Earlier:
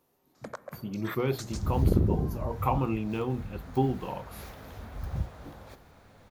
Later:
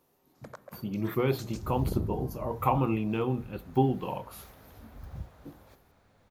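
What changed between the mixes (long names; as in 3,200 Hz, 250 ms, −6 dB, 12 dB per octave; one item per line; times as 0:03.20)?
speech: send on
first sound −6.0 dB
second sound −8.5 dB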